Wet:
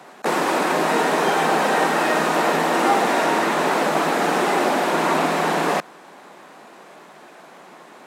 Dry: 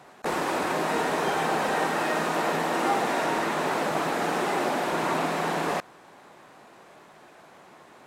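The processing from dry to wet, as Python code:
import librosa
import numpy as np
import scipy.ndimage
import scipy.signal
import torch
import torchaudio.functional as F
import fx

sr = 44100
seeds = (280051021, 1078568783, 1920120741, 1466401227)

y = scipy.signal.sosfilt(scipy.signal.butter(6, 160.0, 'highpass', fs=sr, output='sos'), x)
y = F.gain(torch.from_numpy(y), 7.0).numpy()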